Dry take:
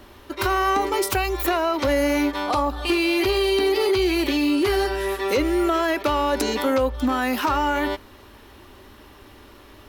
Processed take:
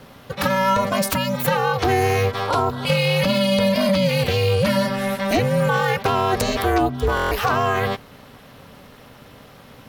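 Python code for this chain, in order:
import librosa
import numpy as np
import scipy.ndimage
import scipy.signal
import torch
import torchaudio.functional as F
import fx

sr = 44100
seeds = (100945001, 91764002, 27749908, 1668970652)

y = x * np.sin(2.0 * np.pi * 190.0 * np.arange(len(x)) / sr)
y = fx.buffer_glitch(y, sr, at_s=(7.15,), block=1024, repeats=6)
y = F.gain(torch.from_numpy(y), 5.0).numpy()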